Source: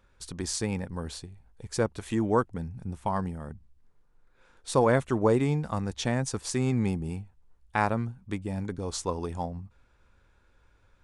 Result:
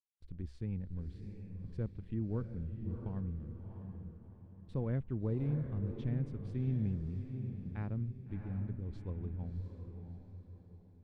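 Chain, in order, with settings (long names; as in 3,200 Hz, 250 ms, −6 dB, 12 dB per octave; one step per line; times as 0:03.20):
slack as between gear wheels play −41.5 dBFS
guitar amp tone stack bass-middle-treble 10-0-1
noise gate with hold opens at −48 dBFS
high-frequency loss of the air 480 metres
feedback delay with all-pass diffusion 684 ms, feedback 40%, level −7 dB
level +7.5 dB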